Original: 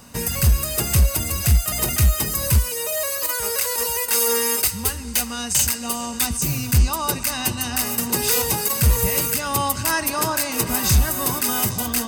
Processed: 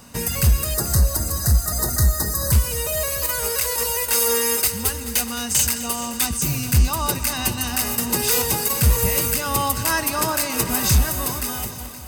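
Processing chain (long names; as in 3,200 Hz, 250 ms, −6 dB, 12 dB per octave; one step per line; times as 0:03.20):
fade-out on the ending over 1.15 s
0:00.74–0:02.52: Chebyshev band-stop filter 1,900–3,900 Hz, order 4
feedback echo at a low word length 215 ms, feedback 80%, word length 7 bits, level −15 dB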